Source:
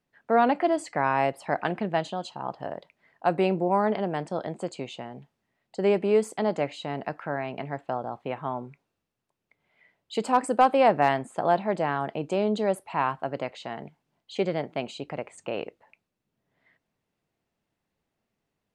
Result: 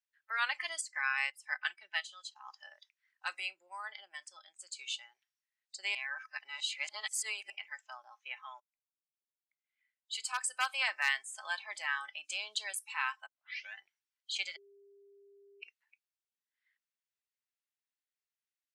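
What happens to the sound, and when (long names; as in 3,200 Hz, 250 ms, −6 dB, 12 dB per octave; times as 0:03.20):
0:00.81–0:02.36: expander for the loud parts, over −45 dBFS
0:03.40–0:04.79: clip gain −5 dB
0:05.95–0:07.50: reverse
0:08.60–0:12.25: fade in equal-power
0:13.26: tape start 0.50 s
0:14.56–0:15.62: beep over 400 Hz −18.5 dBFS
whole clip: noise reduction from a noise print of the clip's start 17 dB; Chebyshev high-pass filter 1,500 Hz, order 3; parametric band 7,000 Hz +8.5 dB 2.9 octaves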